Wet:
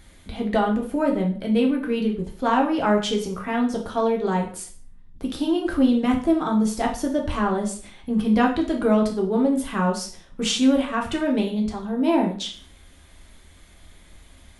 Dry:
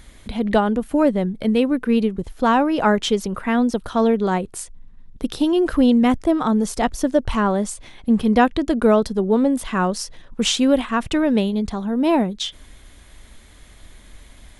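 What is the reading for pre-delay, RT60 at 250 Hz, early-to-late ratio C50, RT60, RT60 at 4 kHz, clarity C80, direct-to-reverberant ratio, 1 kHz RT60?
3 ms, 0.50 s, 9.0 dB, 0.45 s, 0.40 s, 13.5 dB, −0.5 dB, 0.45 s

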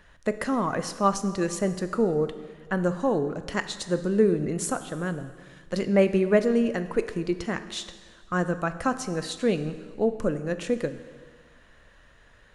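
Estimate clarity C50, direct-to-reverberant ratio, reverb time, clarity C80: 12.0 dB, 10.5 dB, 1.6 s, 13.5 dB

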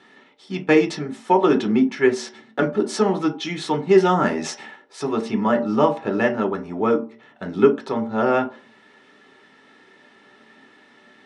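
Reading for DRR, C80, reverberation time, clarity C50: 2.0 dB, 18.0 dB, 0.45 s, 13.5 dB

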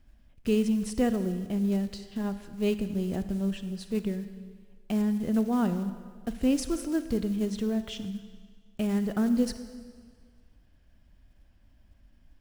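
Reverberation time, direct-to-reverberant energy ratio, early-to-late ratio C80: 1.7 s, 10.5 dB, 12.0 dB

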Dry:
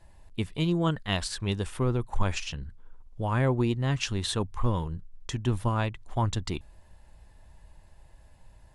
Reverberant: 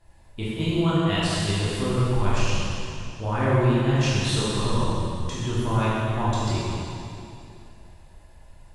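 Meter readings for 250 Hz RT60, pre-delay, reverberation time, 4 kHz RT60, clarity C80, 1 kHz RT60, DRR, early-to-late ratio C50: 2.7 s, 9 ms, 2.7 s, 2.5 s, −2.5 dB, 2.7 s, −9.5 dB, −4.0 dB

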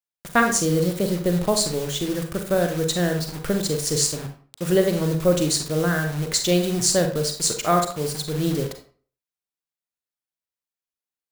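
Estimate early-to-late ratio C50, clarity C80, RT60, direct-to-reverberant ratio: 8.0 dB, 12.5 dB, 0.40 s, 4.5 dB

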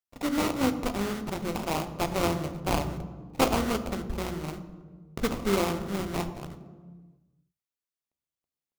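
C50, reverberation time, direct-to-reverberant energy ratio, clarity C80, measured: 11.5 dB, 1.5 s, 8.5 dB, 13.0 dB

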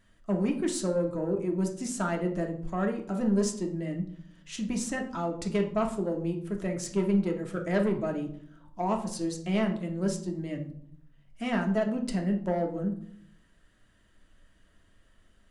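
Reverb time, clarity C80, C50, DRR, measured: 0.65 s, 14.0 dB, 9.5 dB, 2.0 dB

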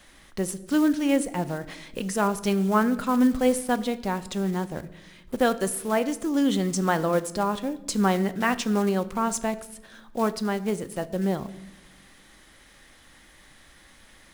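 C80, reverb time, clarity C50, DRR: 19.0 dB, 0.95 s, 17.0 dB, 12.0 dB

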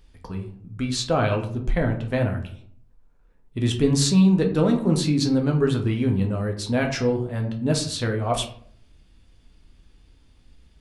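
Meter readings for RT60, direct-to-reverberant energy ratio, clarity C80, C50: 0.55 s, 2.0 dB, 13.0 dB, 10.0 dB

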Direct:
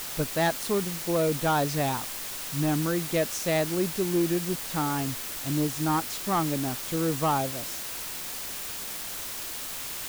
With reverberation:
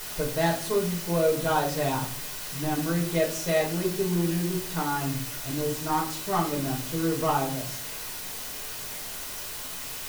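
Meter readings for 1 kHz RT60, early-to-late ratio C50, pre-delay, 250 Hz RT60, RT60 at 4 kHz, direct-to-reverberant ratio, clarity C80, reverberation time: 0.45 s, 8.5 dB, 5 ms, 0.80 s, 0.35 s, −2.5 dB, 13.0 dB, 0.50 s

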